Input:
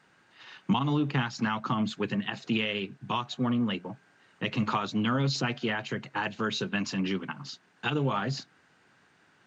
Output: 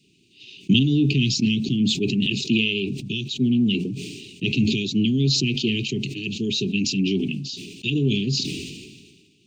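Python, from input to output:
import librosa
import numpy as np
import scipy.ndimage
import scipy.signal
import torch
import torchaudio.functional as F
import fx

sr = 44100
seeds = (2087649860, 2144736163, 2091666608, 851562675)

y = scipy.signal.sosfilt(scipy.signal.cheby1(5, 1.0, [410.0, 2500.0], 'bandstop', fs=sr, output='sos'), x)
y = fx.sustainer(y, sr, db_per_s=38.0)
y = F.gain(torch.from_numpy(y), 8.0).numpy()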